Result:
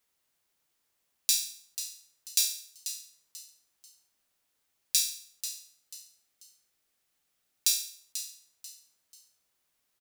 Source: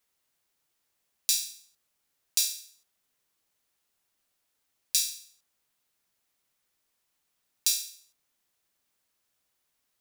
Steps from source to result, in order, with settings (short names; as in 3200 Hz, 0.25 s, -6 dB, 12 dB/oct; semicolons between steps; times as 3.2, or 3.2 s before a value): 5.15–7.68 notch 990 Hz, Q 7.1; frequency-shifting echo 0.489 s, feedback 32%, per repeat +130 Hz, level -11 dB